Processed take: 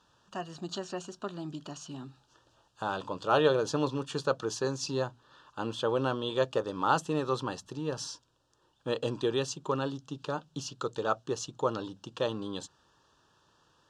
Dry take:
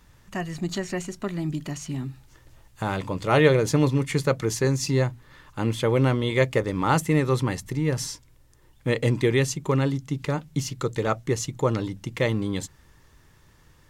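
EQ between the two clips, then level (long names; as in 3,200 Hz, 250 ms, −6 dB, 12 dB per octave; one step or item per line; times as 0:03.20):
high-pass filter 760 Hz 6 dB per octave
Butterworth band-reject 2,100 Hz, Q 1.7
high-frequency loss of the air 110 metres
0.0 dB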